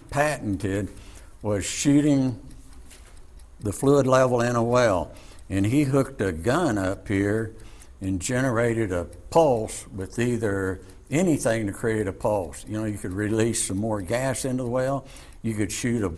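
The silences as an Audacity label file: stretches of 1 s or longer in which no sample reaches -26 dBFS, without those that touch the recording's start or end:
2.330000	3.660000	silence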